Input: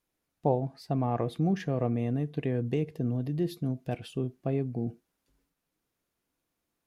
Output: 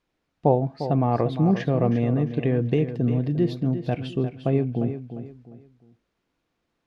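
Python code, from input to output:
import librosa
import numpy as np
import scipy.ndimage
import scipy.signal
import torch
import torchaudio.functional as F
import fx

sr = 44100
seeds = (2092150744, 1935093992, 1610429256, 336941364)

p1 = scipy.signal.sosfilt(scipy.signal.butter(2, 4300.0, 'lowpass', fs=sr, output='sos'), x)
p2 = p1 + fx.echo_feedback(p1, sr, ms=351, feedback_pct=31, wet_db=-10.5, dry=0)
y = p2 * librosa.db_to_amplitude(7.0)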